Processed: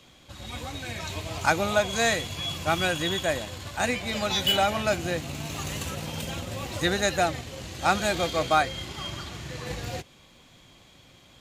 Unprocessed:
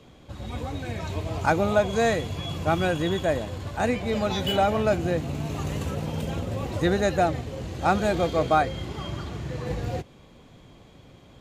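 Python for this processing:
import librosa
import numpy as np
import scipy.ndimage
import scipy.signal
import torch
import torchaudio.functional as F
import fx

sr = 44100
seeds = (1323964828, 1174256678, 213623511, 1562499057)

p1 = fx.tilt_shelf(x, sr, db=-7.0, hz=1400.0)
p2 = fx.notch(p1, sr, hz=440.0, q=12.0)
p3 = np.sign(p2) * np.maximum(np.abs(p2) - 10.0 ** (-38.0 / 20.0), 0.0)
y = p2 + (p3 * librosa.db_to_amplitude(-11.0))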